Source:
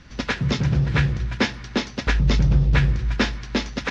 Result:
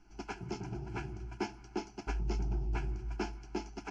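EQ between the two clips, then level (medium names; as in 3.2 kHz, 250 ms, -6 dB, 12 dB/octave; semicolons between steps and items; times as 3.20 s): treble shelf 5.8 kHz -7.5 dB; static phaser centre 370 Hz, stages 8; static phaser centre 750 Hz, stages 8; -6.0 dB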